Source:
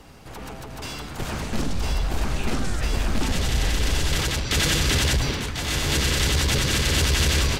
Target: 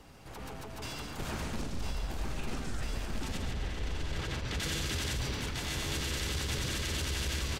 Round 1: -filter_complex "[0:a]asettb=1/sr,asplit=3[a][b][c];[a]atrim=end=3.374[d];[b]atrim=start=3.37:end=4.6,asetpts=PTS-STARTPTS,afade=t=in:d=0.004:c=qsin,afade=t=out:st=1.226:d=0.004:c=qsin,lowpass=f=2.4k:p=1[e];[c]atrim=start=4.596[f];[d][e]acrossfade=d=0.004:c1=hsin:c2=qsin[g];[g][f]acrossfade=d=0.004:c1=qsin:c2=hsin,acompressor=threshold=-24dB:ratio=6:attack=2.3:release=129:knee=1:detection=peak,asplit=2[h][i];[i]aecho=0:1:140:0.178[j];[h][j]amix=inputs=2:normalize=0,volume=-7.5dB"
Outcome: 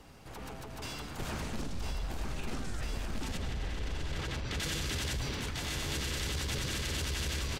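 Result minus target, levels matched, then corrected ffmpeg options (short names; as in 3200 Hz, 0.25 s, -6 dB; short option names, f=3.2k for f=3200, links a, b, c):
echo-to-direct -8.5 dB
-filter_complex "[0:a]asettb=1/sr,asplit=3[a][b][c];[a]atrim=end=3.374[d];[b]atrim=start=3.37:end=4.6,asetpts=PTS-STARTPTS,afade=t=in:d=0.004:c=qsin,afade=t=out:st=1.226:d=0.004:c=qsin,lowpass=f=2.4k:p=1[e];[c]atrim=start=4.596[f];[d][e]acrossfade=d=0.004:c1=hsin:c2=qsin[g];[g][f]acrossfade=d=0.004:c1=qsin:c2=hsin,acompressor=threshold=-24dB:ratio=6:attack=2.3:release=129:knee=1:detection=peak,asplit=2[h][i];[i]aecho=0:1:140:0.473[j];[h][j]amix=inputs=2:normalize=0,volume=-7.5dB"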